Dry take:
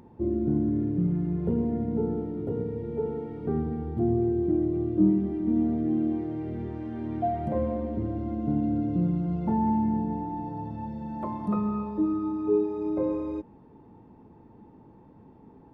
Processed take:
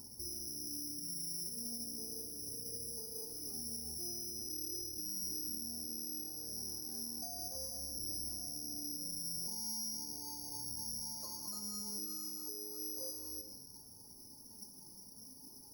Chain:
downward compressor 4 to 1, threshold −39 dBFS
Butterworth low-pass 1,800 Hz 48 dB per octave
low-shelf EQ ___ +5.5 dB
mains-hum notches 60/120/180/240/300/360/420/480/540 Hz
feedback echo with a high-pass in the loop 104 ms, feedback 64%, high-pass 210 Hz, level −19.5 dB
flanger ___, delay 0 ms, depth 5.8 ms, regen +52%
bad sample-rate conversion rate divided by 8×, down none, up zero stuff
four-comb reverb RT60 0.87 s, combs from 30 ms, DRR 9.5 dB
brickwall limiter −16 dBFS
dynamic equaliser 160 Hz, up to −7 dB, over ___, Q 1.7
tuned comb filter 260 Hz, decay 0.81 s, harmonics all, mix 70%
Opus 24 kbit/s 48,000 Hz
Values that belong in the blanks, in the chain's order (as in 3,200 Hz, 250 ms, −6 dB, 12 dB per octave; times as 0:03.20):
350 Hz, 0.37 Hz, −54 dBFS